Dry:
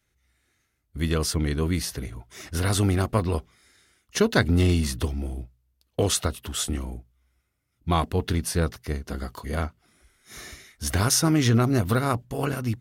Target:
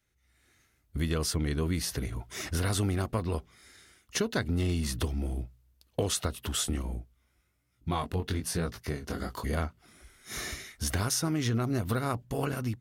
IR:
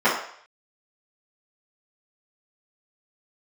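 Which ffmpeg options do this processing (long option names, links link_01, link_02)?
-filter_complex "[0:a]dynaudnorm=framelen=150:gausssize=5:maxgain=9dB,asettb=1/sr,asplit=3[link_01][link_02][link_03];[link_01]atrim=end=6.824[link_04];[link_02]atrim=start=6.82:end=9.43,asetpts=PTS-STARTPTS,afade=type=in:duration=0.004:curve=qsin,afade=type=out:start_time=2.606:duration=0.004:curve=qsin,flanger=delay=17:depth=5.7:speed=1.1[link_05];[link_03]atrim=start=9.426[link_06];[link_04][link_05]acrossfade=duration=0.004:curve1=hsin:curve2=qsin[link_07];[link_07][link_06]acrossfade=duration=0.004:curve1=qsin:curve2=hsin,acompressor=threshold=-27dB:ratio=2.5,volume=-4dB"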